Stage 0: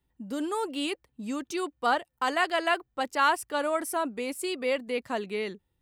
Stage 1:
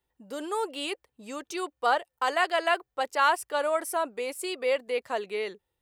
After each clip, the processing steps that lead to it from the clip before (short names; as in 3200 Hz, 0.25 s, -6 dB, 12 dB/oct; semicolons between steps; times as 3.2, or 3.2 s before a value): resonant low shelf 340 Hz -8.5 dB, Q 1.5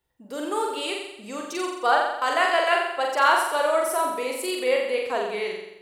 flutter echo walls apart 7.5 m, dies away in 0.88 s; gain +2 dB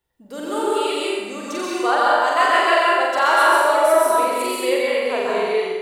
reverb RT60 1.1 s, pre-delay 0.118 s, DRR -4.5 dB